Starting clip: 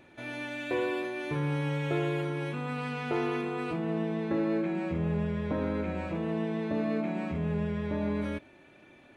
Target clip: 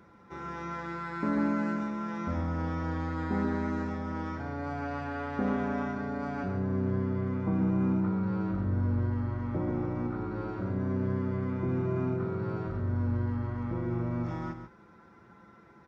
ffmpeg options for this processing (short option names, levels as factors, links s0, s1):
-af "highpass=110,equalizer=f=270:t=o:w=0.29:g=-6.5,bandreject=f=60:t=h:w=6,bandreject=f=120:t=h:w=6,bandreject=f=180:t=h:w=6,bandreject=f=240:t=h:w=6,aecho=1:1:79:0.355,asetrate=25442,aresample=44100,volume=1.12"